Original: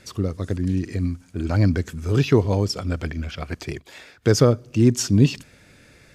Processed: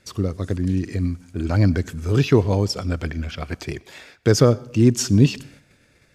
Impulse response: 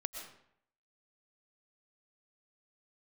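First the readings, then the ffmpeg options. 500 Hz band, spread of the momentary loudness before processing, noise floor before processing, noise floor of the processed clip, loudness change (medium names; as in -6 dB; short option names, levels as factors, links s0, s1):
+1.0 dB, 13 LU, -53 dBFS, -58 dBFS, +1.0 dB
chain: -filter_complex "[0:a]agate=range=0.355:threshold=0.00355:ratio=16:detection=peak,asplit=2[s0][s1];[1:a]atrim=start_sample=2205,asetrate=52920,aresample=44100[s2];[s1][s2]afir=irnorm=-1:irlink=0,volume=0.2[s3];[s0][s3]amix=inputs=2:normalize=0"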